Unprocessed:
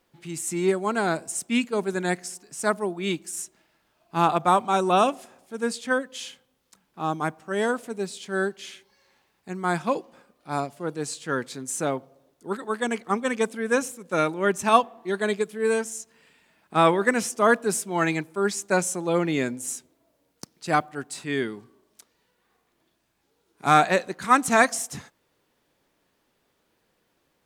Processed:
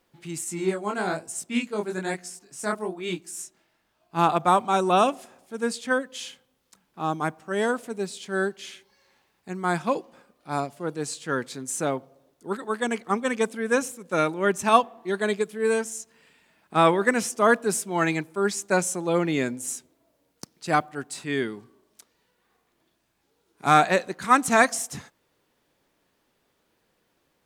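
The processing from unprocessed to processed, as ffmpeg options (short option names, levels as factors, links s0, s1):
-filter_complex "[0:a]asettb=1/sr,asplit=3[s0][s1][s2];[s0]atrim=end=0.444[s3];[s1]atrim=start=0.44:end=4.19,asetpts=PTS-STARTPTS,afade=t=in:d=0.004:c=qsin,afade=t=out:st=3.746:d=0.004:c=qsin,flanger=delay=17:depth=7.5:speed=1.1[s4];[s2]atrim=start=4.186[s5];[s3][s4]acrossfade=d=0.004:c1=hsin:c2=qsin[s6];[s6][s5]acrossfade=d=0.004:c1=qsin:c2=hsin"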